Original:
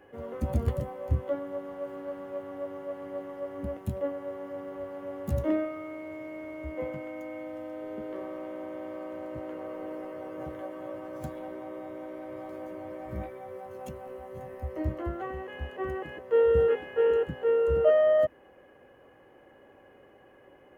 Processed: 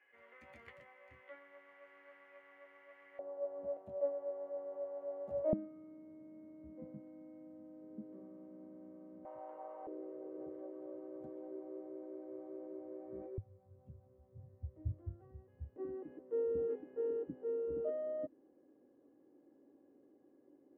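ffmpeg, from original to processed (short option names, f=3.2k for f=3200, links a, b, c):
-af "asetnsamples=n=441:p=0,asendcmd='3.19 bandpass f 630;5.53 bandpass f 210;9.25 bandpass f 810;9.87 bandpass f 390;13.38 bandpass f 100;15.76 bandpass f 290',bandpass=f=2.1k:t=q:w=4.9:csg=0"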